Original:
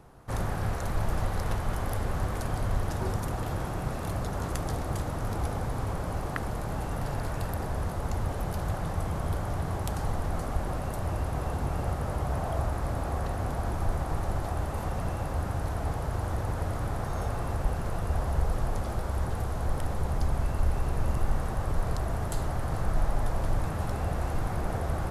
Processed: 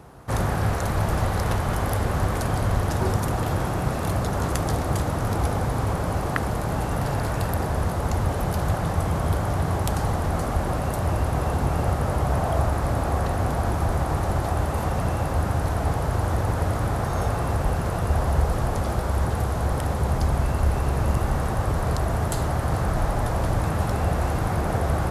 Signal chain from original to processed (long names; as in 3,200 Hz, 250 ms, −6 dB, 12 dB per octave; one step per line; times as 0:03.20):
high-pass filter 50 Hz
level +8 dB